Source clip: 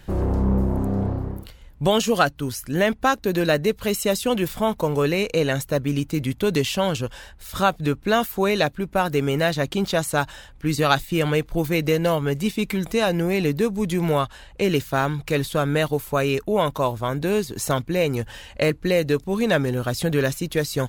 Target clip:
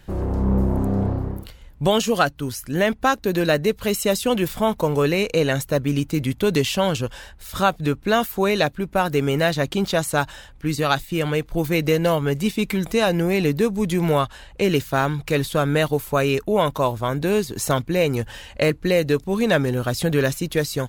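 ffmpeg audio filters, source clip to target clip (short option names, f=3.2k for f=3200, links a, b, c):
-af "dynaudnorm=f=300:g=3:m=4.5dB,volume=-2.5dB"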